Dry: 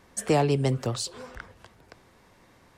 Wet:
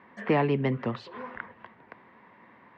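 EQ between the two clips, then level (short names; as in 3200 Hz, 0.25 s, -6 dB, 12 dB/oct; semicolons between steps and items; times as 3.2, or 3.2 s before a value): dynamic EQ 800 Hz, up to -5 dB, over -38 dBFS, Q 0.91; speaker cabinet 160–2800 Hz, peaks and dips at 220 Hz +7 dB, 1000 Hz +9 dB, 1900 Hz +8 dB; 0.0 dB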